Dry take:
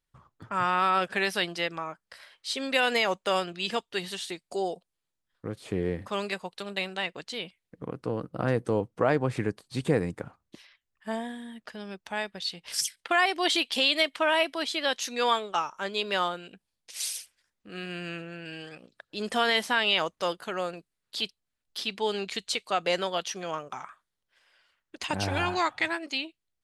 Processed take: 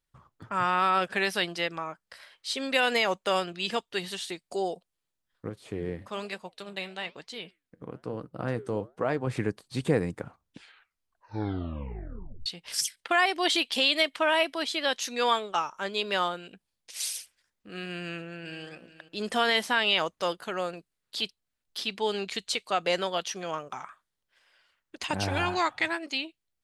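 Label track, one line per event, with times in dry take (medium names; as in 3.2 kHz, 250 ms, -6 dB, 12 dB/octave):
5.490000	9.270000	flange 1.1 Hz, delay 2.2 ms, depth 9.6 ms, regen -83%
10.260000	10.260000	tape stop 2.20 s
18.000000	18.650000	echo throw 430 ms, feedback 25%, level -15.5 dB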